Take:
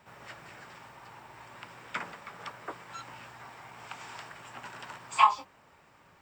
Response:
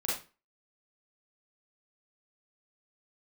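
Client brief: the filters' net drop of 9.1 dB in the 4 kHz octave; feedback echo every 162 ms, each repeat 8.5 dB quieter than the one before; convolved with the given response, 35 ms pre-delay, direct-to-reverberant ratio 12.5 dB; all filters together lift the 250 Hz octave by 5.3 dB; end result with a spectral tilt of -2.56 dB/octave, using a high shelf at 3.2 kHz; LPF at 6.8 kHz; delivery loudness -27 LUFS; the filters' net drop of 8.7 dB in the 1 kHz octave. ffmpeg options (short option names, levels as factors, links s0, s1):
-filter_complex "[0:a]lowpass=6800,equalizer=f=250:t=o:g=7.5,equalizer=f=1000:t=o:g=-9,highshelf=f=3200:g=-7,equalizer=f=4000:t=o:g=-7,aecho=1:1:162|324|486|648:0.376|0.143|0.0543|0.0206,asplit=2[s0][s1];[1:a]atrim=start_sample=2205,adelay=35[s2];[s1][s2]afir=irnorm=-1:irlink=0,volume=0.119[s3];[s0][s3]amix=inputs=2:normalize=0,volume=5.31"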